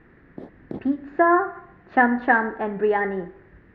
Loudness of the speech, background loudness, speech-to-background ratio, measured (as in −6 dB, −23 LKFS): −22.0 LKFS, −40.5 LKFS, 18.5 dB